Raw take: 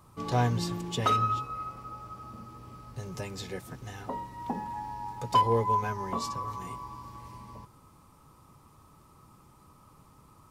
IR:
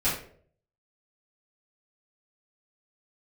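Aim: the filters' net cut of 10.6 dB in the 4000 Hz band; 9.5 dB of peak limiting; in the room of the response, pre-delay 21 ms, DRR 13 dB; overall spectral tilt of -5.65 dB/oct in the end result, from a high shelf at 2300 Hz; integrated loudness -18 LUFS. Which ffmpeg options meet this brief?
-filter_complex "[0:a]highshelf=f=2.3k:g=-6,equalizer=f=4k:t=o:g=-8.5,alimiter=level_in=1dB:limit=-24dB:level=0:latency=1,volume=-1dB,asplit=2[a][b];[1:a]atrim=start_sample=2205,adelay=21[c];[b][c]afir=irnorm=-1:irlink=0,volume=-24dB[d];[a][d]amix=inputs=2:normalize=0,volume=18.5dB"

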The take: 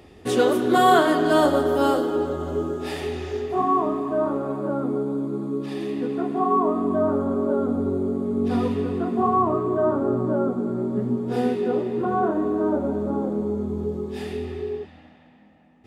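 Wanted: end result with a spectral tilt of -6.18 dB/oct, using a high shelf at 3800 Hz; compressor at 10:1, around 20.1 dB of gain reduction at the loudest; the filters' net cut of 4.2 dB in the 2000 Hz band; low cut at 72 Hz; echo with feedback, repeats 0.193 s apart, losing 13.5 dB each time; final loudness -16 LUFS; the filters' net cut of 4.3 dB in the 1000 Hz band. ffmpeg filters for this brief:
-af "highpass=72,equalizer=f=1k:t=o:g=-5.5,equalizer=f=2k:t=o:g=-5,highshelf=f=3.8k:g=7.5,acompressor=threshold=-36dB:ratio=10,aecho=1:1:193|386:0.211|0.0444,volume=23dB"

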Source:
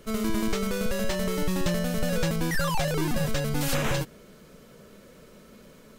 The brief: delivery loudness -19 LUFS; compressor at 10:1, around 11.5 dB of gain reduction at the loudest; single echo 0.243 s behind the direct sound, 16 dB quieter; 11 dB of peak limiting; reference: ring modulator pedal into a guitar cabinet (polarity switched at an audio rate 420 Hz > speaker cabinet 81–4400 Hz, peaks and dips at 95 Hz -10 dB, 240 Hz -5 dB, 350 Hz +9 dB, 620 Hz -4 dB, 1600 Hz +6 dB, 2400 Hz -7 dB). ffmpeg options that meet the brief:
-af "acompressor=threshold=-33dB:ratio=10,alimiter=level_in=12dB:limit=-24dB:level=0:latency=1,volume=-12dB,aecho=1:1:243:0.158,aeval=exprs='val(0)*sgn(sin(2*PI*420*n/s))':c=same,highpass=81,equalizer=f=95:t=q:w=4:g=-10,equalizer=f=240:t=q:w=4:g=-5,equalizer=f=350:t=q:w=4:g=9,equalizer=f=620:t=q:w=4:g=-4,equalizer=f=1.6k:t=q:w=4:g=6,equalizer=f=2.4k:t=q:w=4:g=-7,lowpass=f=4.4k:w=0.5412,lowpass=f=4.4k:w=1.3066,volume=24.5dB"

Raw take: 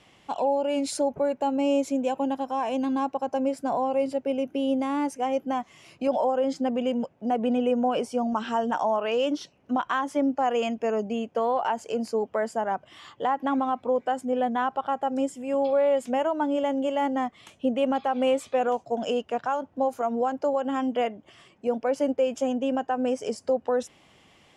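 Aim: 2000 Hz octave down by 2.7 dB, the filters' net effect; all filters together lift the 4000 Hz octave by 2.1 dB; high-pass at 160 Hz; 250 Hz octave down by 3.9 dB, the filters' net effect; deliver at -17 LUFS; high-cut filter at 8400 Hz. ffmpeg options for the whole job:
-af "highpass=160,lowpass=8.4k,equalizer=f=250:t=o:g=-3.5,equalizer=f=2k:t=o:g=-5.5,equalizer=f=4k:t=o:g=6.5,volume=11dB"

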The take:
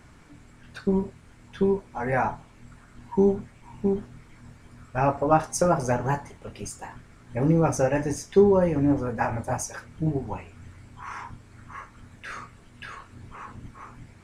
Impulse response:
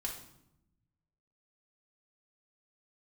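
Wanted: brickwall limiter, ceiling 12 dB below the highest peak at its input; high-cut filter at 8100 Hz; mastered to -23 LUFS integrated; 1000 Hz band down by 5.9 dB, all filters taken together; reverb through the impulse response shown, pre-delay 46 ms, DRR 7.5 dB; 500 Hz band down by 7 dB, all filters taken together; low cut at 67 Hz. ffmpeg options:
-filter_complex "[0:a]highpass=67,lowpass=8.1k,equalizer=f=500:t=o:g=-8.5,equalizer=f=1k:t=o:g=-4.5,alimiter=limit=-23dB:level=0:latency=1,asplit=2[a][b];[1:a]atrim=start_sample=2205,adelay=46[c];[b][c]afir=irnorm=-1:irlink=0,volume=-8dB[d];[a][d]amix=inputs=2:normalize=0,volume=11dB"

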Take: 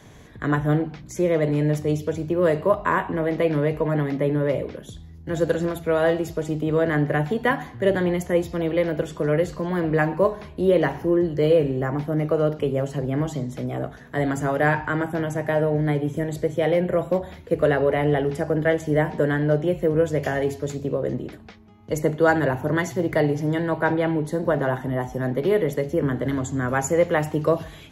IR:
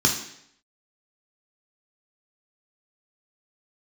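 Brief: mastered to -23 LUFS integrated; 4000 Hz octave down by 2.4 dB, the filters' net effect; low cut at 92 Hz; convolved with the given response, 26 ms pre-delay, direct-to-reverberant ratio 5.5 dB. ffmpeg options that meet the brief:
-filter_complex "[0:a]highpass=92,equalizer=f=4k:t=o:g=-3.5,asplit=2[a][b];[1:a]atrim=start_sample=2205,adelay=26[c];[b][c]afir=irnorm=-1:irlink=0,volume=-20dB[d];[a][d]amix=inputs=2:normalize=0,volume=-2dB"

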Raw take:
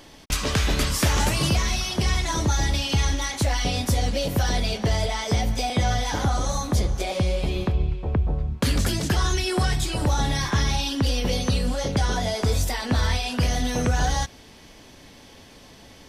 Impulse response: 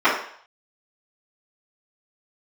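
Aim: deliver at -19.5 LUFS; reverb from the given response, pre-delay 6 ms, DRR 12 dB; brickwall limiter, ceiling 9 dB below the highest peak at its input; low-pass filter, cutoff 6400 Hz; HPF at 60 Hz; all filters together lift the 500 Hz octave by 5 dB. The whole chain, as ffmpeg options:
-filter_complex "[0:a]highpass=60,lowpass=6.4k,equalizer=f=500:t=o:g=6,alimiter=limit=-16.5dB:level=0:latency=1,asplit=2[a][b];[1:a]atrim=start_sample=2205,adelay=6[c];[b][c]afir=irnorm=-1:irlink=0,volume=-35dB[d];[a][d]amix=inputs=2:normalize=0,volume=6.5dB"

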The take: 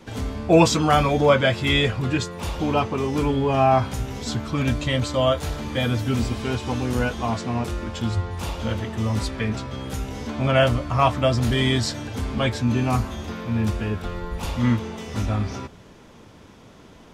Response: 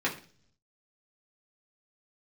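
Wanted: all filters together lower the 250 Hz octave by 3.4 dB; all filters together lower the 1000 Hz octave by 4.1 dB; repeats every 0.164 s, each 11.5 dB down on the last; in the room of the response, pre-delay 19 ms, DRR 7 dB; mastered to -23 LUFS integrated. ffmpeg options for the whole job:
-filter_complex "[0:a]equalizer=f=250:t=o:g=-4,equalizer=f=1k:t=o:g=-5.5,aecho=1:1:164|328|492:0.266|0.0718|0.0194,asplit=2[a][b];[1:a]atrim=start_sample=2205,adelay=19[c];[b][c]afir=irnorm=-1:irlink=0,volume=-16.5dB[d];[a][d]amix=inputs=2:normalize=0,volume=1dB"

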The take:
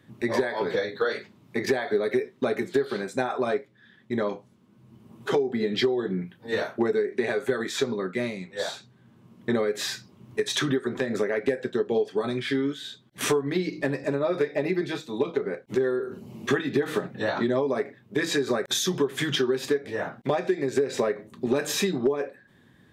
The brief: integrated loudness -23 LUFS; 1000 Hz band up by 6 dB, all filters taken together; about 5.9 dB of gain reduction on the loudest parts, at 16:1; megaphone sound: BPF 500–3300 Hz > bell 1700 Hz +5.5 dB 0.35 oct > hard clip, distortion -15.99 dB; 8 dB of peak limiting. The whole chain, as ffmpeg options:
-af "equalizer=f=1k:t=o:g=8,acompressor=threshold=-23dB:ratio=16,alimiter=limit=-19.5dB:level=0:latency=1,highpass=500,lowpass=3.3k,equalizer=f=1.7k:t=o:w=0.35:g=5.5,asoftclip=type=hard:threshold=-26dB,volume=11dB"

